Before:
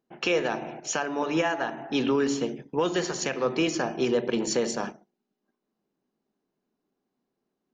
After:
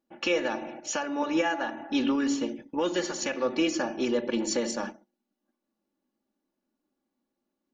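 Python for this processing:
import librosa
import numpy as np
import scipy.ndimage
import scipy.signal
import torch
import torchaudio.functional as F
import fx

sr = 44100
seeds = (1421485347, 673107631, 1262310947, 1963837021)

y = x + 0.74 * np.pad(x, (int(3.5 * sr / 1000.0), 0))[:len(x)]
y = y * 10.0 ** (-3.5 / 20.0)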